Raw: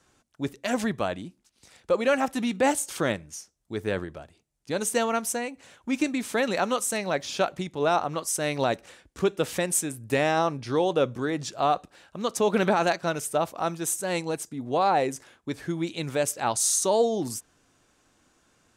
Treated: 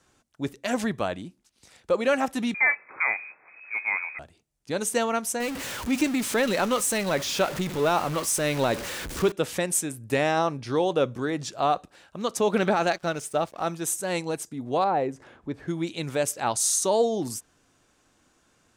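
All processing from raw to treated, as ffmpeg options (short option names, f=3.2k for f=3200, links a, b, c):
-filter_complex "[0:a]asettb=1/sr,asplit=3[a][b][c];[a]atrim=end=2.544[d];[b]atrim=start=2.54:end=4.19,asetpts=PTS-STARTPTS,afade=t=in:d=0.004:c=qsin,afade=t=out:st=1.646:d=0.004:c=qsin,aeval=exprs='val(0)+0.5*0.0106*sgn(val(0))':c=same,lowpass=f=2.2k:t=q:w=0.5098,lowpass=f=2.2k:t=q:w=0.6013,lowpass=f=2.2k:t=q:w=0.9,lowpass=f=2.2k:t=q:w=2.563,afreqshift=-2600,highpass=f=280:p=1[e];[c]atrim=start=4.186[f];[d][e]acrossfade=d=0.004:c1=hsin:c2=qsin[g];[g][f]acrossfade=d=0.004:c1=qsin:c2=hsin,asettb=1/sr,asplit=3[h][i][j];[h]atrim=end=5.404[k];[i]atrim=start=5.4:end=9.32,asetpts=PTS-STARTPTS,afade=t=in:d=0.004:c=qsin,afade=t=out:st=3.916:d=0.004:c=qsin,aeval=exprs='val(0)+0.5*0.0355*sgn(val(0))':c=same,equalizer=f=720:t=o:w=0.21:g=-4.5[l];[j]atrim=start=9.316[m];[k][l]acrossfade=d=0.004:c1=hsin:c2=qsin[n];[n][m]acrossfade=d=0.004:c1=qsin:c2=hsin,asettb=1/sr,asplit=3[o][p][q];[o]atrim=end=12.584[r];[p]atrim=start=12.58:end=13.67,asetpts=PTS-STARTPTS,afade=t=in:d=0.004:c=qsin,afade=t=out:st=1.086:d=0.004:c=qsin,lowpass=9.1k,bandreject=f=990:w=13,aeval=exprs='sgn(val(0))*max(abs(val(0))-0.00316,0)':c=same[s];[q]atrim=start=13.666[t];[r][s]acrossfade=d=0.004:c1=hsin:c2=qsin[u];[u][t]acrossfade=d=0.004:c1=qsin:c2=hsin,asettb=1/sr,asplit=3[v][w][x];[v]atrim=end=14.844[y];[w]atrim=start=14.84:end=15.68,asetpts=PTS-STARTPTS,afade=t=in:d=0.004:c=qsin,afade=t=out:st=0.836:d=0.004:c=qsin,lowpass=f=1k:p=1,acompressor=mode=upward:threshold=-39dB:ratio=2.5:attack=3.2:release=140:knee=2.83:detection=peak[z];[x]atrim=start=15.676[aa];[y][z]acrossfade=d=0.004:c1=hsin:c2=qsin[ab];[ab][aa]acrossfade=d=0.004:c1=qsin:c2=hsin"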